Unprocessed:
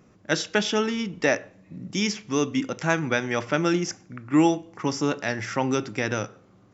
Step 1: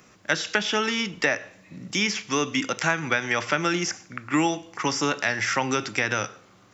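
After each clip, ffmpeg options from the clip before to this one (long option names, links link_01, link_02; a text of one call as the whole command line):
ffmpeg -i in.wav -filter_complex "[0:a]acrossover=split=2600[link_01][link_02];[link_02]acompressor=threshold=-38dB:ratio=4:attack=1:release=60[link_03];[link_01][link_03]amix=inputs=2:normalize=0,tiltshelf=frequency=830:gain=-8,acrossover=split=180[link_04][link_05];[link_05]acompressor=threshold=-25dB:ratio=4[link_06];[link_04][link_06]amix=inputs=2:normalize=0,volume=5dB" out.wav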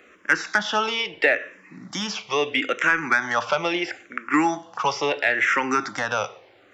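ffmpeg -i in.wav -filter_complex "[0:a]bass=frequency=250:gain=-14,treble=frequency=4000:gain=-13,asoftclip=type=tanh:threshold=-12.5dB,asplit=2[link_01][link_02];[link_02]afreqshift=-0.75[link_03];[link_01][link_03]amix=inputs=2:normalize=1,volume=8dB" out.wav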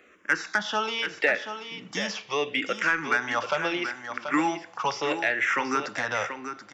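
ffmpeg -i in.wav -af "aecho=1:1:733:0.355,volume=-4.5dB" out.wav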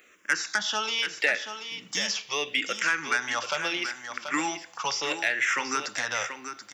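ffmpeg -i in.wav -af "crystalizer=i=6:c=0,volume=-6.5dB" out.wav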